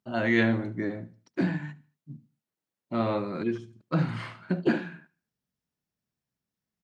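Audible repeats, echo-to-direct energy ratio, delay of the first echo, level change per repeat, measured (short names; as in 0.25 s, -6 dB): 2, -21.5 dB, 74 ms, -8.0 dB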